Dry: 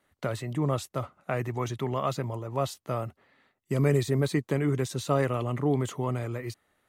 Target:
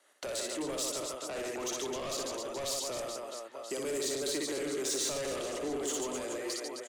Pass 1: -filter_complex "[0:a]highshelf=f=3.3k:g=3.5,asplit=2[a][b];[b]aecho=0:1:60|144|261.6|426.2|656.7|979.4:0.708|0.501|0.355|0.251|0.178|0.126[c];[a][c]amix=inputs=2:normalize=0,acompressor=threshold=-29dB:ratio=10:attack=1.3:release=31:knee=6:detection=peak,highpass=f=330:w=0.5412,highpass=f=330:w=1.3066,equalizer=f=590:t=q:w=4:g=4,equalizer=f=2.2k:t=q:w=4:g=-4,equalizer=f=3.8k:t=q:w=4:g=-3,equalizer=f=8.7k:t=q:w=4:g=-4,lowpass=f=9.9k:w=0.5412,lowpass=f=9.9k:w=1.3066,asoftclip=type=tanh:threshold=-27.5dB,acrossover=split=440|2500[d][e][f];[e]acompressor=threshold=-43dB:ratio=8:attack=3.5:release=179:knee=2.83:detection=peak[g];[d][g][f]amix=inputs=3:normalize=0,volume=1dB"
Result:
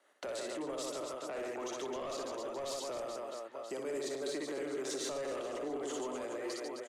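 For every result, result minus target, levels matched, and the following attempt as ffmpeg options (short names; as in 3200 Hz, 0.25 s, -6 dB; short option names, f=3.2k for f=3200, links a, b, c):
compressor: peak gain reduction +7.5 dB; 8000 Hz band -6.0 dB
-filter_complex "[0:a]highshelf=f=3.3k:g=3.5,asplit=2[a][b];[b]aecho=0:1:60|144|261.6|426.2|656.7|979.4:0.708|0.501|0.355|0.251|0.178|0.126[c];[a][c]amix=inputs=2:normalize=0,acompressor=threshold=-20.5dB:ratio=10:attack=1.3:release=31:knee=6:detection=peak,highpass=f=330:w=0.5412,highpass=f=330:w=1.3066,equalizer=f=590:t=q:w=4:g=4,equalizer=f=2.2k:t=q:w=4:g=-4,equalizer=f=3.8k:t=q:w=4:g=-3,equalizer=f=8.7k:t=q:w=4:g=-4,lowpass=f=9.9k:w=0.5412,lowpass=f=9.9k:w=1.3066,asoftclip=type=tanh:threshold=-27.5dB,acrossover=split=440|2500[d][e][f];[e]acompressor=threshold=-43dB:ratio=8:attack=3.5:release=179:knee=2.83:detection=peak[g];[d][g][f]amix=inputs=3:normalize=0,volume=1dB"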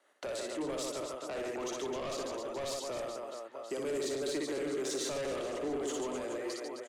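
8000 Hz band -5.5 dB
-filter_complex "[0:a]highshelf=f=3.3k:g=14.5,asplit=2[a][b];[b]aecho=0:1:60|144|261.6|426.2|656.7|979.4:0.708|0.501|0.355|0.251|0.178|0.126[c];[a][c]amix=inputs=2:normalize=0,acompressor=threshold=-20.5dB:ratio=10:attack=1.3:release=31:knee=6:detection=peak,highpass=f=330:w=0.5412,highpass=f=330:w=1.3066,equalizer=f=590:t=q:w=4:g=4,equalizer=f=2.2k:t=q:w=4:g=-4,equalizer=f=3.8k:t=q:w=4:g=-3,equalizer=f=8.7k:t=q:w=4:g=-4,lowpass=f=9.9k:w=0.5412,lowpass=f=9.9k:w=1.3066,asoftclip=type=tanh:threshold=-27.5dB,acrossover=split=440|2500[d][e][f];[e]acompressor=threshold=-43dB:ratio=8:attack=3.5:release=179:knee=2.83:detection=peak[g];[d][g][f]amix=inputs=3:normalize=0,volume=1dB"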